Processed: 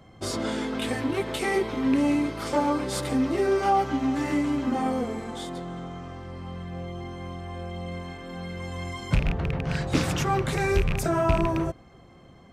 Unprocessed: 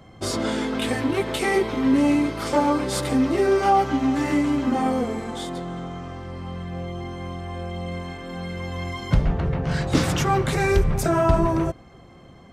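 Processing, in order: rattle on loud lows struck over -18 dBFS, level -15 dBFS; 8.60–9.16 s: peaking EQ 8.2 kHz +8.5 dB 0.51 oct; trim -4 dB

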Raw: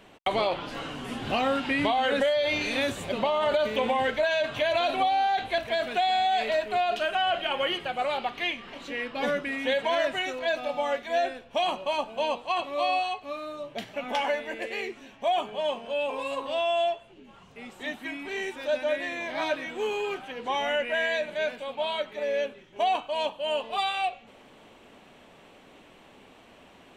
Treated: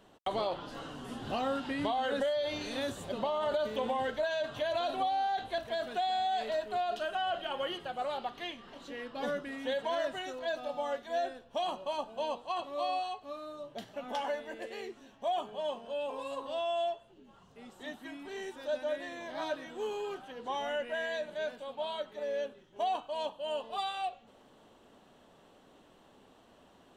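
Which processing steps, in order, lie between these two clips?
peaking EQ 2.3 kHz -12 dB 0.47 oct; trim -6.5 dB

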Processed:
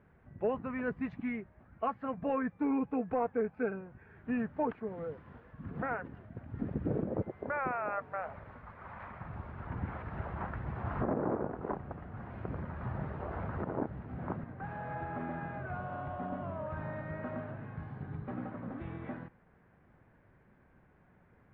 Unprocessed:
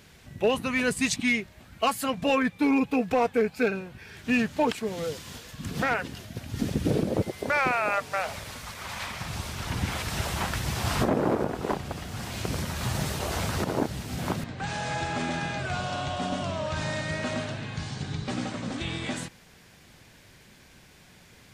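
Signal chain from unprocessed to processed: low-pass 1.6 kHz 24 dB/octave; trim -8 dB

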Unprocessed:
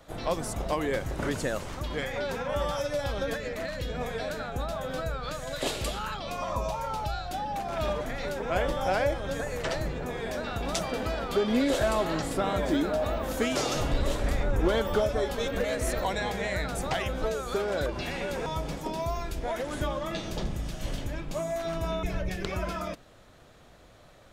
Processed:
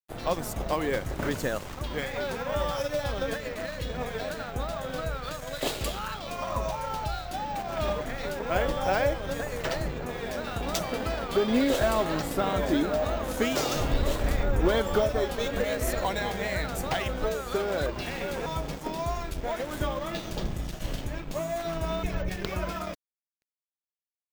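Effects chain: wow and flutter 28 cents; careless resampling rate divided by 2×, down none, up hold; crossover distortion -43.5 dBFS; trim +2 dB

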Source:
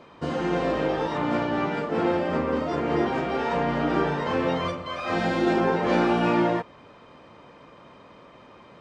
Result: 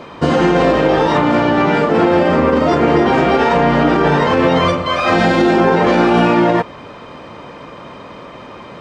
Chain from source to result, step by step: loudness maximiser +18.5 dB; trim -3 dB

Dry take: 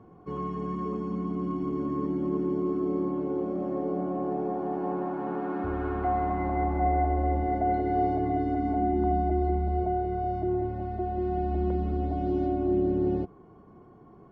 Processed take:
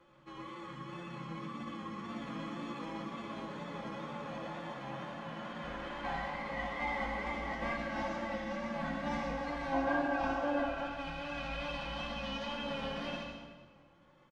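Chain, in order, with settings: formants flattened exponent 0.3; low-pass 2.5 kHz 12 dB/octave; time-frequency box 9.72–10.87 s, 320–1500 Hz +8 dB; reverb removal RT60 0.63 s; hum notches 60/120/180/240 Hz; comb 4.3 ms, depth 43%; formant-preserving pitch shift -4.5 st; feedback comb 510 Hz, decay 0.19 s, harmonics all, mix 80%; wow and flutter 62 cents; reverse echo 545 ms -21 dB; reverberation RT60 1.4 s, pre-delay 56 ms, DRR 1.5 dB

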